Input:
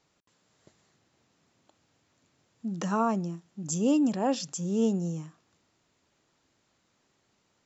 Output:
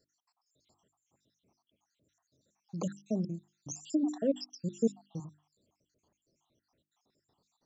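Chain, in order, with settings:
time-frequency cells dropped at random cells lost 77%
flat-topped bell 1,900 Hz −10 dB 1.3 octaves
mains-hum notches 50/100/150/200/250/300/350 Hz

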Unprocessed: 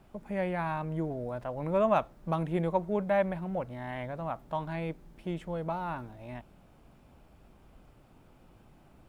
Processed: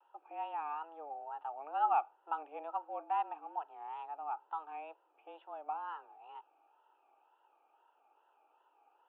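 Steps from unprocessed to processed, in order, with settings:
formant filter a
single-sideband voice off tune +150 Hz 160–3,200 Hz
tape wow and flutter 110 cents
level +2 dB

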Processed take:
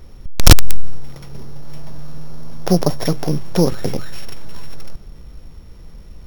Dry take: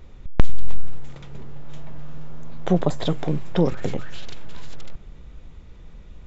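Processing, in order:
samples sorted by size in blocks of 8 samples
wrap-around overflow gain 5.5 dB
level +4.5 dB

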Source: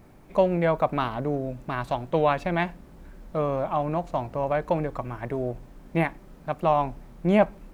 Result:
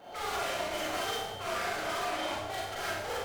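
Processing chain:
partials spread apart or drawn together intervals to 91%
low-shelf EQ 86 Hz −10 dB
hollow resonant body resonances 280/1,300/2,600 Hz, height 13 dB, ringing for 35 ms
tube saturation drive 40 dB, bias 0.5
change of speed 2.38×
four-comb reverb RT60 0.95 s, combs from 32 ms, DRR −7 dB

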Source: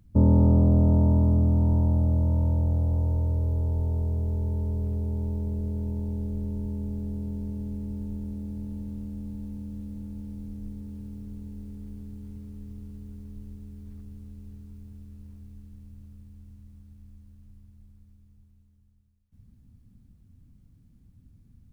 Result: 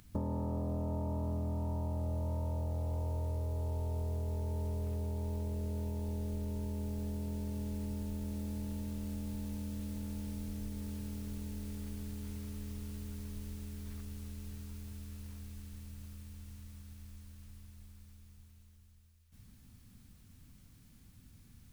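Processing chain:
tilt shelving filter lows −9.5 dB, about 640 Hz
downward compressor 4 to 1, threshold −42 dBFS, peak gain reduction 16.5 dB
bucket-brigade delay 378 ms, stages 2,048, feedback 77%, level −21 dB
level +5.5 dB

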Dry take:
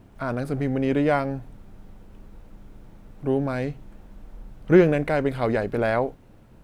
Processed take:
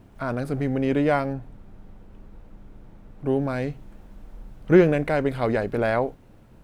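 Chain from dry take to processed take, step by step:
0:01.33–0:03.26: high-shelf EQ 3,900 Hz −7.5 dB

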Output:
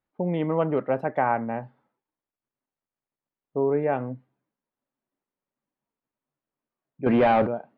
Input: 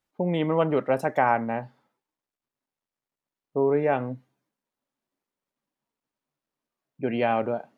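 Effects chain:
0:07.06–0:07.47: leveller curve on the samples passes 3
high-frequency loss of the air 430 metres

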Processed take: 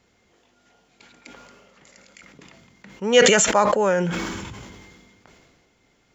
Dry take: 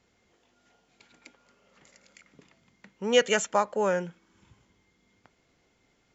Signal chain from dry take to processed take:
level that may fall only so fast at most 30 dB per second
level +5.5 dB

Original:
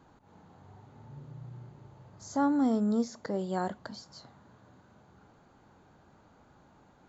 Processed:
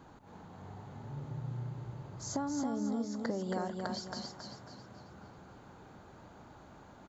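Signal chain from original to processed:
downward compressor 16 to 1, threshold −37 dBFS, peak gain reduction 15.5 dB
repeating echo 273 ms, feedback 40%, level −4 dB
level +4.5 dB

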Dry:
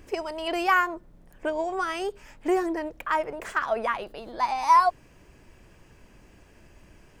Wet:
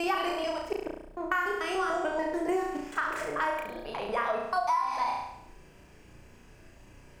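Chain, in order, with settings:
slices reordered back to front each 146 ms, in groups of 5
flutter between parallel walls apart 5.9 metres, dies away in 0.71 s
downward compressor 10 to 1, threshold −22 dBFS, peak gain reduction 13 dB
level −2.5 dB

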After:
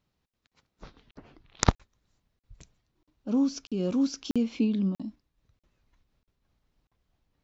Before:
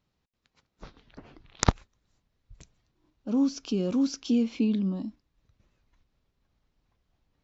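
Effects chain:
regular buffer underruns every 0.64 s, samples 2,048, zero, from 0:00.47
amplitude modulation by smooth noise, depth 50%
level +1.5 dB

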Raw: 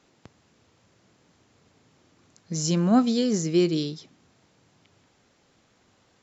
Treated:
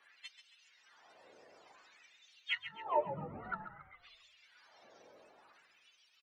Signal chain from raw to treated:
frequency axis turned over on the octave scale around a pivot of 680 Hz
treble cut that deepens with the level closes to 310 Hz, closed at −23.5 dBFS
formants moved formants +5 semitones
auto-filter high-pass sine 0.54 Hz 500–3,300 Hz
echo with shifted repeats 136 ms, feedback 46%, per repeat −52 Hz, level −11 dB
level +3 dB

